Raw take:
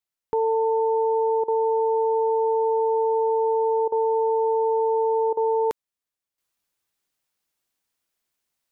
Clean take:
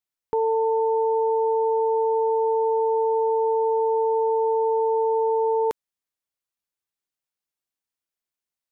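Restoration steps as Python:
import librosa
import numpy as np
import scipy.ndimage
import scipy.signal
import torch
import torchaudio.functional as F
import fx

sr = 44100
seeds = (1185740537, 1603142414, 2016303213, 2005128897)

y = fx.fix_interpolate(x, sr, at_s=(1.44, 3.88, 5.33), length_ms=40.0)
y = fx.fix_level(y, sr, at_s=6.38, step_db=-9.5)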